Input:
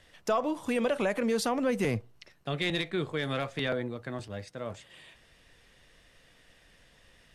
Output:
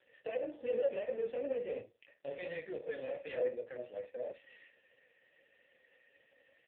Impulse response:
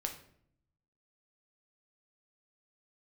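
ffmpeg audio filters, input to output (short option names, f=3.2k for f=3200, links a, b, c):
-filter_complex "[0:a]asoftclip=type=tanh:threshold=-31dB,flanger=delay=17.5:depth=6.9:speed=2.5,asplit=3[a][b][c];[a]bandpass=f=530:t=q:w=8,volume=0dB[d];[b]bandpass=f=1.84k:t=q:w=8,volume=-6dB[e];[c]bandpass=f=2.48k:t=q:w=8,volume=-9dB[f];[d][e][f]amix=inputs=3:normalize=0,atempo=1.1,asplit=2[g][h];[1:a]atrim=start_sample=2205,atrim=end_sample=3969,highshelf=f=8.8k:g=7[i];[h][i]afir=irnorm=-1:irlink=0,volume=-1dB[j];[g][j]amix=inputs=2:normalize=0,volume=5.5dB" -ar 8000 -c:a libopencore_amrnb -b:a 5150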